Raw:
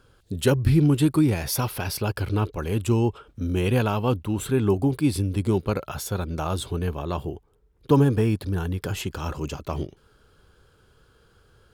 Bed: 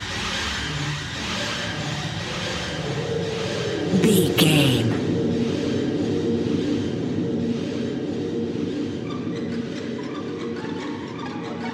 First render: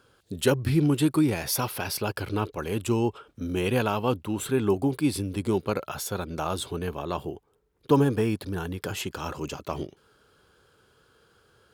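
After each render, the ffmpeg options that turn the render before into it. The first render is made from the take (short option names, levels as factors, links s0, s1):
-af "highpass=f=230:p=1"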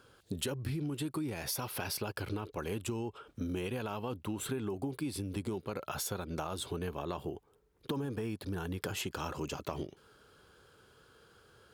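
-af "alimiter=limit=0.15:level=0:latency=1:release=31,acompressor=threshold=0.0224:ratio=10"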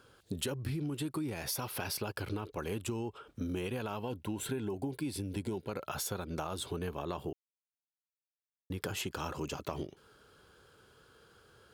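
-filter_complex "[0:a]asettb=1/sr,asplit=3[s0][s1][s2];[s0]atrim=end=4.034[s3];[s1]atrim=start=4.03:end=5.69,asetpts=PTS-STARTPTS,afade=t=in:d=0.004:c=qsin,afade=t=out:st=1.656:d=0.004:c=qsin,asuperstop=centerf=1200:order=12:qfactor=5[s4];[s2]atrim=start=5.686[s5];[s3][s4]acrossfade=d=0.004:c1=hsin:c2=qsin[s6];[s6][s5]acrossfade=d=0.004:c1=qsin:c2=hsin,asplit=3[s7][s8][s9];[s7]atrim=end=7.33,asetpts=PTS-STARTPTS,afade=t=out:st=7.326:d=0.004:c=hsin[s10];[s8]atrim=start=7.33:end=8.7,asetpts=PTS-STARTPTS,volume=0[s11];[s9]atrim=start=8.7,asetpts=PTS-STARTPTS,afade=t=in:d=0.004:c=hsin[s12];[s10][s11][s12]concat=n=3:v=0:a=1"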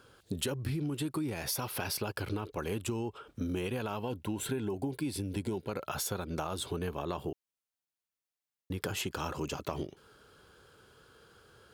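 -af "volume=1.26"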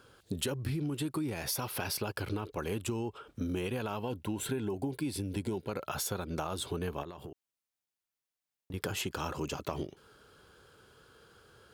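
-filter_complex "[0:a]asettb=1/sr,asplit=3[s0][s1][s2];[s0]atrim=end=7.034[s3];[s1]atrim=start=7.03:end=8.74,asetpts=PTS-STARTPTS,afade=t=in:d=0.004:c=qsin,afade=t=out:st=1.706:d=0.004:c=qsin,acompressor=threshold=0.01:ratio=10:attack=3.2:release=140:knee=1:detection=peak[s4];[s2]atrim=start=8.736[s5];[s3][s4]acrossfade=d=0.004:c1=hsin:c2=qsin[s6];[s6][s5]acrossfade=d=0.004:c1=qsin:c2=hsin"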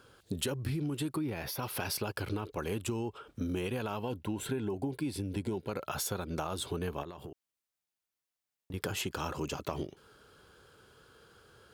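-filter_complex "[0:a]asettb=1/sr,asplit=3[s0][s1][s2];[s0]atrim=end=1.164[s3];[s1]atrim=start=1.16:end=1.63,asetpts=PTS-STARTPTS,afade=t=in:d=0.004:c=qsin,afade=t=out:st=0.466:d=0.004:c=qsin,equalizer=f=7900:w=1.3:g=-15[s4];[s2]atrim=start=1.626[s5];[s3][s4]acrossfade=d=0.004:c1=hsin:c2=qsin[s6];[s6][s5]acrossfade=d=0.004:c1=qsin:c2=hsin,asettb=1/sr,asplit=3[s7][s8][s9];[s7]atrim=end=4.184[s10];[s8]atrim=start=4.18:end=5.65,asetpts=PTS-STARTPTS,afade=t=in:d=0.004:c=qsin,afade=t=out:st=1.466:d=0.004:c=qsin,highshelf=f=4300:g=-4.5[s11];[s9]atrim=start=5.646[s12];[s10][s11]acrossfade=d=0.004:c1=hsin:c2=qsin[s13];[s13][s12]acrossfade=d=0.004:c1=qsin:c2=hsin"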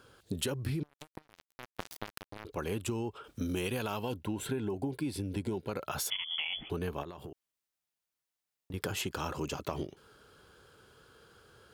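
-filter_complex "[0:a]asettb=1/sr,asplit=3[s0][s1][s2];[s0]atrim=end=0.834[s3];[s1]atrim=start=0.83:end=2.45,asetpts=PTS-STARTPTS,afade=t=in:d=0.004:c=qsin,afade=t=out:st=1.616:d=0.004:c=qsin,acrusher=bits=3:mix=0:aa=0.5[s4];[s2]atrim=start=2.446[s5];[s3][s4]acrossfade=d=0.004:c1=hsin:c2=qsin[s6];[s6][s5]acrossfade=d=0.004:c1=qsin:c2=hsin,asettb=1/sr,asplit=3[s7][s8][s9];[s7]atrim=end=3.244[s10];[s8]atrim=start=3.24:end=4.14,asetpts=PTS-STARTPTS,afade=t=in:d=0.004:c=qsin,afade=t=out:st=0.896:d=0.004:c=qsin,highshelf=f=3100:g=8.5[s11];[s9]atrim=start=4.136[s12];[s10][s11]acrossfade=d=0.004:c1=hsin:c2=qsin[s13];[s13][s12]acrossfade=d=0.004:c1=qsin:c2=hsin,asettb=1/sr,asplit=3[s14][s15][s16];[s14]atrim=end=6.104[s17];[s15]atrim=start=6.1:end=6.7,asetpts=PTS-STARTPTS,afade=t=in:d=0.004:c=qsin,afade=t=out:st=0.596:d=0.004:c=qsin,lowpass=f=3000:t=q:w=0.5098,lowpass=f=3000:t=q:w=0.6013,lowpass=f=3000:t=q:w=0.9,lowpass=f=3000:t=q:w=2.563,afreqshift=-3500[s18];[s16]atrim=start=6.696[s19];[s17][s18]acrossfade=d=0.004:c1=hsin:c2=qsin[s20];[s20][s19]acrossfade=d=0.004:c1=qsin:c2=hsin"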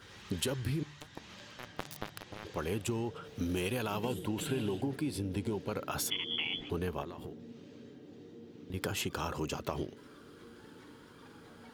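-filter_complex "[1:a]volume=0.0531[s0];[0:a][s0]amix=inputs=2:normalize=0"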